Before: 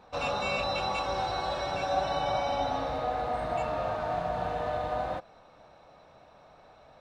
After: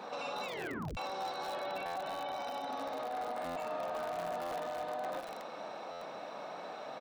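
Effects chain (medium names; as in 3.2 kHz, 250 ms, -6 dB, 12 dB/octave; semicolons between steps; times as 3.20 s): 1.54–2.33 s: low-pass 4.1 kHz 24 dB/octave; peak limiter -43 dBFS, peak gain reduction 26 dB; high-pass 200 Hz 24 dB/octave; doubling 47 ms -8 dB; feedback delay 64 ms, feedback 45%, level -21 dB; 0.45 s: tape stop 0.52 s; buffer glitch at 1.85/3.45/4.41/5.91 s, samples 512, times 8; bit-crushed delay 236 ms, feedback 35%, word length 8-bit, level -6 dB; trim +11 dB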